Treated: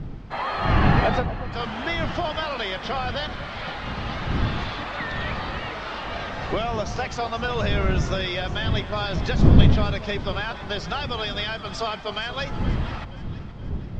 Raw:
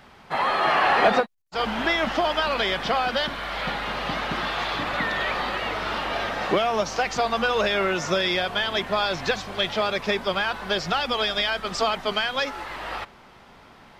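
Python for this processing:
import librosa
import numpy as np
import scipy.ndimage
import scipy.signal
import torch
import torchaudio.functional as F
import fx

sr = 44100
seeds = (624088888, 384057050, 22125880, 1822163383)

p1 = fx.dmg_wind(x, sr, seeds[0], corner_hz=140.0, level_db=-21.0)
p2 = scipy.signal.sosfilt(scipy.signal.butter(4, 7400.0, 'lowpass', fs=sr, output='sos'), p1)
p3 = p2 + fx.echo_alternate(p2, sr, ms=237, hz=1000.0, feedback_pct=68, wet_db=-11.5, dry=0)
y = p3 * librosa.db_to_amplitude(-4.5)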